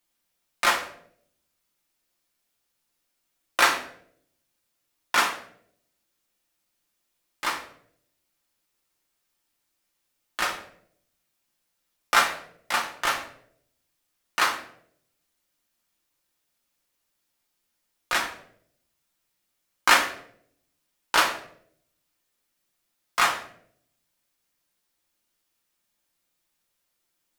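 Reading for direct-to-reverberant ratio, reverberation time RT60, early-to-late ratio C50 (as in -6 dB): 0.5 dB, 0.65 s, 9.5 dB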